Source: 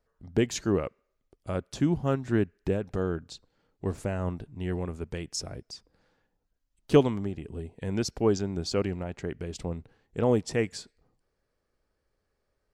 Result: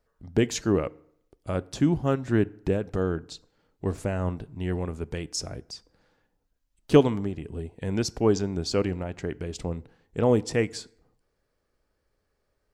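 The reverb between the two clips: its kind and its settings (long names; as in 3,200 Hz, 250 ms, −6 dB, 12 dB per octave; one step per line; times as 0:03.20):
feedback delay network reverb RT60 0.68 s, low-frequency decay 0.95×, high-frequency decay 0.6×, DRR 19 dB
level +2.5 dB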